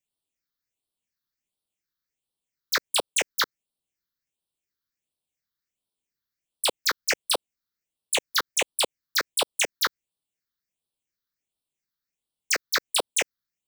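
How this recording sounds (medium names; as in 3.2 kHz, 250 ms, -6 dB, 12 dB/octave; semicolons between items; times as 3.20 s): phasing stages 6, 1.4 Hz, lowest notch 670–1900 Hz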